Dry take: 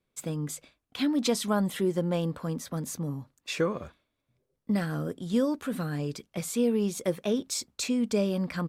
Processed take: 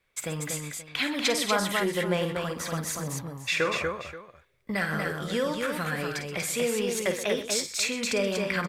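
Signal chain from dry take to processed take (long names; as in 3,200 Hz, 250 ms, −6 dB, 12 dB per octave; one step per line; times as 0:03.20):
graphic EQ with 10 bands 125 Hz −4 dB, 250 Hz −11 dB, 2,000 Hz +10 dB
in parallel at −0.5 dB: downward compressor, threshold −38 dBFS, peak gain reduction 14.5 dB
on the sum: multi-tap delay 51/127/239/529 ms −9/−13.5/−4/−16 dB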